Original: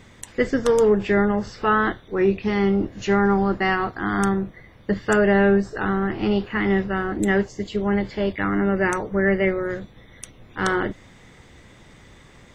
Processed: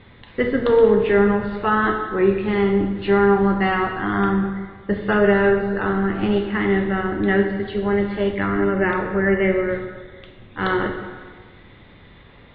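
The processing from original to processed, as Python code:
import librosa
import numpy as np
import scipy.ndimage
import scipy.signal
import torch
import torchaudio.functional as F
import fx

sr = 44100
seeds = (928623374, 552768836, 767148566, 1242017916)

y = scipy.signal.sosfilt(scipy.signal.butter(12, 4100.0, 'lowpass', fs=sr, output='sos'), x)
y = fx.rev_plate(y, sr, seeds[0], rt60_s=1.5, hf_ratio=0.8, predelay_ms=0, drr_db=3.5)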